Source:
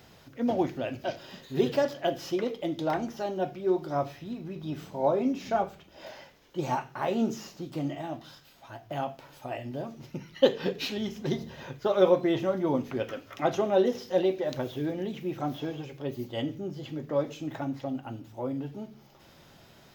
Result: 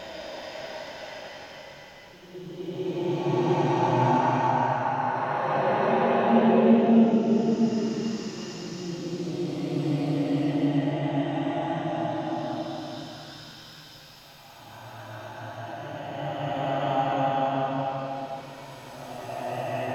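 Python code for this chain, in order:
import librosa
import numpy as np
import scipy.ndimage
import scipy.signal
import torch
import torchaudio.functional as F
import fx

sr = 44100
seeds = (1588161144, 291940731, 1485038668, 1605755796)

y = fx.env_lowpass_down(x, sr, base_hz=1800.0, full_db=-23.5)
y = fx.paulstretch(y, sr, seeds[0], factor=5.7, window_s=0.5, from_s=5.99)
y = F.gain(torch.from_numpy(y), 7.5).numpy()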